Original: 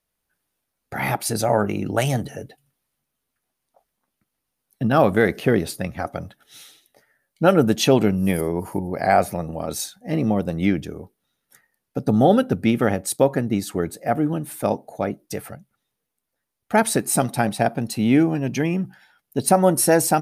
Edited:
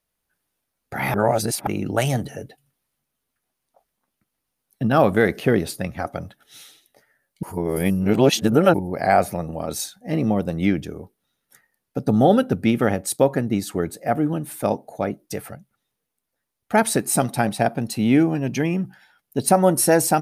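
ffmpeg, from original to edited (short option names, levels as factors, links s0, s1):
-filter_complex "[0:a]asplit=5[s0][s1][s2][s3][s4];[s0]atrim=end=1.142[s5];[s1]atrim=start=1.138:end=1.672,asetpts=PTS-STARTPTS,areverse[s6];[s2]atrim=start=1.668:end=7.432[s7];[s3]atrim=start=7.428:end=8.742,asetpts=PTS-STARTPTS,areverse[s8];[s4]atrim=start=8.738[s9];[s5][s6]acrossfade=d=0.004:c1=hsin:c2=hsin[s10];[s10][s7]acrossfade=d=0.004:c1=hsin:c2=hsin[s11];[s11][s8]acrossfade=d=0.004:c1=hsin:c2=hsin[s12];[s12][s9]acrossfade=d=0.004:c1=hsin:c2=hsin"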